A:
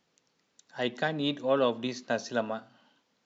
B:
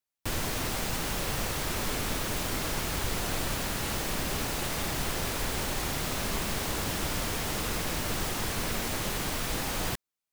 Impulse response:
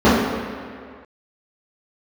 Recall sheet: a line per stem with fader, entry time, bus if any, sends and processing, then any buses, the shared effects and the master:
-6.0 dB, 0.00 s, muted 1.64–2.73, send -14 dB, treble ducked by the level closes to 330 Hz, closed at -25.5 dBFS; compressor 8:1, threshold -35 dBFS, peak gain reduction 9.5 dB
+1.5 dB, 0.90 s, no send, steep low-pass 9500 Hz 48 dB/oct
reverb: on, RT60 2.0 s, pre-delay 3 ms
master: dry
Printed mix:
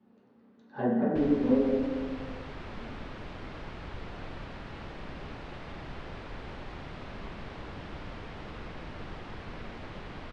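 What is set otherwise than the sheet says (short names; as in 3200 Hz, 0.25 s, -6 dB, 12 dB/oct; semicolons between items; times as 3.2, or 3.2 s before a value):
stem B +1.5 dB -> -8.0 dB; master: extra air absorption 340 m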